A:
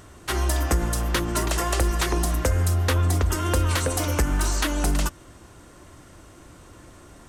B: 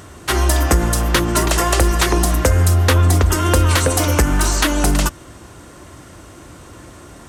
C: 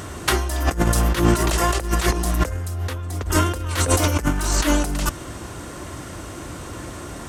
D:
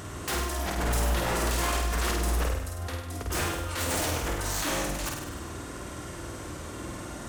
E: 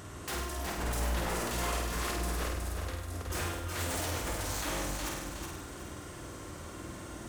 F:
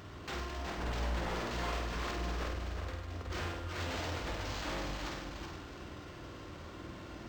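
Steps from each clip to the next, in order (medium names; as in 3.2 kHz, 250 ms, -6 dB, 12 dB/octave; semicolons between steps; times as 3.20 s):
high-pass 47 Hz; trim +8.5 dB
compressor with a negative ratio -19 dBFS, ratio -0.5
wavefolder -18 dBFS; flutter echo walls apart 8.6 m, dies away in 0.89 s; trim -7 dB
bit-crushed delay 367 ms, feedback 35%, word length 9-bit, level -5 dB; trim -6.5 dB
decimation joined by straight lines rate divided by 4×; trim -3 dB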